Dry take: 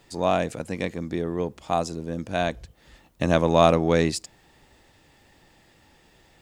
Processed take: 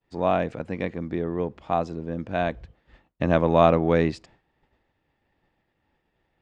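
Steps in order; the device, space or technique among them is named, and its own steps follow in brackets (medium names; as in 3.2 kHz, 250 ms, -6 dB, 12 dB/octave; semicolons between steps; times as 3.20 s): hearing-loss simulation (low-pass 2.5 kHz 12 dB/octave; expander -48 dBFS)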